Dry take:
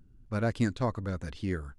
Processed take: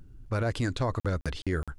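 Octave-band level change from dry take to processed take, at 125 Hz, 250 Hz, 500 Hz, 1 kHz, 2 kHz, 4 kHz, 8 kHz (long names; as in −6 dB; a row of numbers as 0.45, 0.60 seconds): +2.5, −2.0, +2.0, +2.0, +3.0, +6.5, +4.0 decibels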